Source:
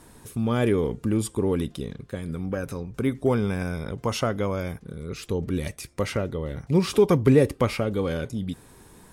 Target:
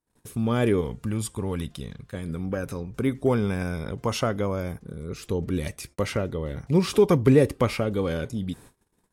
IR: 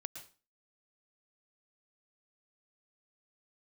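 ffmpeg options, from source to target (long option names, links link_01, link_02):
-filter_complex "[0:a]asettb=1/sr,asplit=3[link_01][link_02][link_03];[link_01]atrim=end=4.414[link_04];[link_02]atrim=start=4.41:end=5.25,asetpts=PTS-STARTPTS,afade=type=in:duration=0.004:curve=qsin,afade=type=out:start_time=0.836:duration=0.004:curve=qsin,equalizer=frequency=2900:width=0.79:gain=-5[link_05];[link_03]atrim=start=5.246[link_06];[link_04][link_05]acrossfade=duration=0.004:curve1=hsin:curve2=qsin[link_07];[link_07][link_06]acrossfade=duration=0.004:curve1=qsin:curve2=hsin,agate=range=-37dB:threshold=-46dB:ratio=16:detection=peak,asettb=1/sr,asplit=3[link_08][link_09][link_10];[link_08]atrim=end=0.814[link_11];[link_09]atrim=start=0.81:end=2.15,asetpts=PTS-STARTPTS,afade=type=in:duration=0.004:curve=qsin,afade=type=out:start_time=1.336:duration=0.004:curve=qsin,equalizer=frequency=350:width=1.1:gain=-9.5[link_12];[link_10]atrim=start=2.146[link_13];[link_11][link_12]acrossfade=duration=0.004:curve1=hsin:curve2=qsin[link_14];[link_14][link_13]acrossfade=duration=0.004:curve1=qsin:curve2=hsin"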